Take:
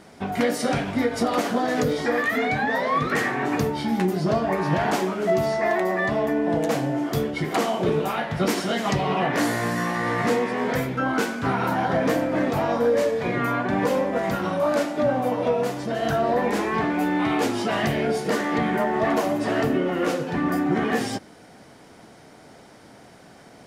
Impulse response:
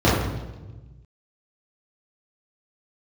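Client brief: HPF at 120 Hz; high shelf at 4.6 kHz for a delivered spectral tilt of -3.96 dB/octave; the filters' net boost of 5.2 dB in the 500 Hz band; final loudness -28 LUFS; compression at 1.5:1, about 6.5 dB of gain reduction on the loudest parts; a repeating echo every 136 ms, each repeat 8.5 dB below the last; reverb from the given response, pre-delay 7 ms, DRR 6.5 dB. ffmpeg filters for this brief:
-filter_complex "[0:a]highpass=120,equalizer=f=500:t=o:g=6.5,highshelf=f=4600:g=-4.5,acompressor=threshold=0.0282:ratio=1.5,aecho=1:1:136|272|408|544:0.376|0.143|0.0543|0.0206,asplit=2[s0][s1];[1:a]atrim=start_sample=2205,adelay=7[s2];[s1][s2]afir=irnorm=-1:irlink=0,volume=0.0355[s3];[s0][s3]amix=inputs=2:normalize=0,volume=0.531"

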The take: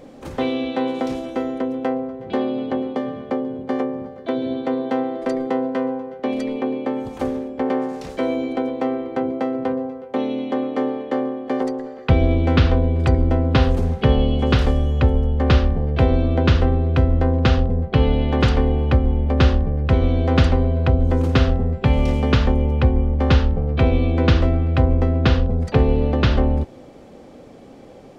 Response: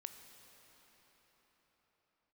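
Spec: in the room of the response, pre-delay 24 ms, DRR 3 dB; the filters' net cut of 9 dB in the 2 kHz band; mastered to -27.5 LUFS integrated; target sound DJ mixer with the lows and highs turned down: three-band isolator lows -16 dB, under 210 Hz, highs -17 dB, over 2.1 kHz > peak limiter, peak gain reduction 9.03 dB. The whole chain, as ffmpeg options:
-filter_complex "[0:a]equalizer=f=2000:t=o:g=-8,asplit=2[s0][s1];[1:a]atrim=start_sample=2205,adelay=24[s2];[s1][s2]afir=irnorm=-1:irlink=0,volume=1.19[s3];[s0][s3]amix=inputs=2:normalize=0,acrossover=split=210 2100:gain=0.158 1 0.141[s4][s5][s6];[s4][s5][s6]amix=inputs=3:normalize=0,volume=0.841,alimiter=limit=0.133:level=0:latency=1"

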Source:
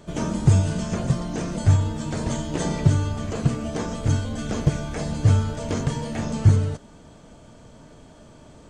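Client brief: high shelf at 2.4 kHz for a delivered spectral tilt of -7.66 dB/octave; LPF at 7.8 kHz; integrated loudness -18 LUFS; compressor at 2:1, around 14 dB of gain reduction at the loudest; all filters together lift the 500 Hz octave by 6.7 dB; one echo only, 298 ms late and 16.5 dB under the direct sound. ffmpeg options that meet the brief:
-af "lowpass=7800,equalizer=f=500:t=o:g=8.5,highshelf=f=2400:g=-3.5,acompressor=threshold=0.0126:ratio=2,aecho=1:1:298:0.15,volume=6.31"

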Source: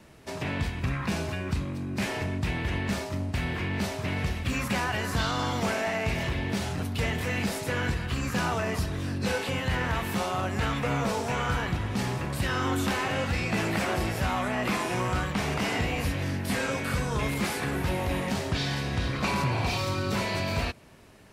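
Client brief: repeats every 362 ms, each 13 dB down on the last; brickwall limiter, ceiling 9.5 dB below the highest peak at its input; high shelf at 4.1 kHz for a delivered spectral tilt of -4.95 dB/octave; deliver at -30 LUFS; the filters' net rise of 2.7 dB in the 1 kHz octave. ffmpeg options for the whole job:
-af "equalizer=f=1000:t=o:g=4,highshelf=f=4100:g=-8.5,alimiter=level_in=1.19:limit=0.0631:level=0:latency=1,volume=0.841,aecho=1:1:362|724|1086:0.224|0.0493|0.0108,volume=1.58"

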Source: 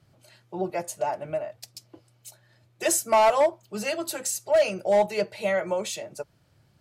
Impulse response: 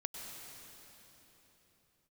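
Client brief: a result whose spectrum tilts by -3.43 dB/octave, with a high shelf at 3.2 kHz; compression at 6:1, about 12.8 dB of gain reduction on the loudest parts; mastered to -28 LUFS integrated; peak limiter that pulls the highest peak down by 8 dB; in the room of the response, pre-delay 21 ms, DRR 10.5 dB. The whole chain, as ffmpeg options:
-filter_complex "[0:a]highshelf=f=3200:g=7.5,acompressor=threshold=0.0316:ratio=6,alimiter=level_in=1.12:limit=0.0631:level=0:latency=1,volume=0.891,asplit=2[s0][s1];[1:a]atrim=start_sample=2205,adelay=21[s2];[s1][s2]afir=irnorm=-1:irlink=0,volume=0.316[s3];[s0][s3]amix=inputs=2:normalize=0,volume=2.24"

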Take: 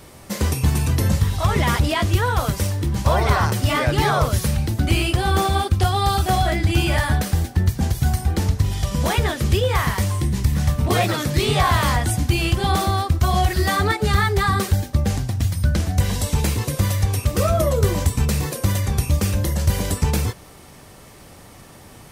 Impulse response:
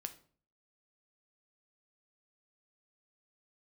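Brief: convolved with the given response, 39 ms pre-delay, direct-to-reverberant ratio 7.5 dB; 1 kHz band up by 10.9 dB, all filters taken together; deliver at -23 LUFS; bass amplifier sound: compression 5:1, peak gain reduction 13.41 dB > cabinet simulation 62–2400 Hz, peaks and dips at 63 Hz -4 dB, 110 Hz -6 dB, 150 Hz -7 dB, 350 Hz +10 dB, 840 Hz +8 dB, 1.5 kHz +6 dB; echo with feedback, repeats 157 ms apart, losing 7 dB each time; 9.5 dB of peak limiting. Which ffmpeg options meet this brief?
-filter_complex "[0:a]equalizer=f=1000:t=o:g=8,alimiter=limit=0.251:level=0:latency=1,aecho=1:1:157|314|471|628|785:0.447|0.201|0.0905|0.0407|0.0183,asplit=2[s0][s1];[1:a]atrim=start_sample=2205,adelay=39[s2];[s1][s2]afir=irnorm=-1:irlink=0,volume=0.596[s3];[s0][s3]amix=inputs=2:normalize=0,acompressor=threshold=0.0398:ratio=5,highpass=f=62:w=0.5412,highpass=f=62:w=1.3066,equalizer=f=63:t=q:w=4:g=-4,equalizer=f=110:t=q:w=4:g=-6,equalizer=f=150:t=q:w=4:g=-7,equalizer=f=350:t=q:w=4:g=10,equalizer=f=840:t=q:w=4:g=8,equalizer=f=1500:t=q:w=4:g=6,lowpass=f=2400:w=0.5412,lowpass=f=2400:w=1.3066,volume=2.11"

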